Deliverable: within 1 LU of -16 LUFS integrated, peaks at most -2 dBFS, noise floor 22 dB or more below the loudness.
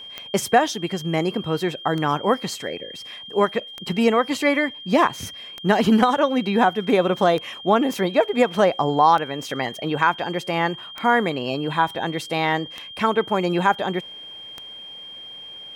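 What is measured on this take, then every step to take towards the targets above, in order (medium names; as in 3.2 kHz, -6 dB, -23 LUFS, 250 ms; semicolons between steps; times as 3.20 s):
clicks found 9; steady tone 3.2 kHz; tone level -36 dBFS; loudness -21.5 LUFS; peak level -3.5 dBFS; loudness target -16.0 LUFS
-> de-click; band-stop 3.2 kHz, Q 30; trim +5.5 dB; peak limiter -2 dBFS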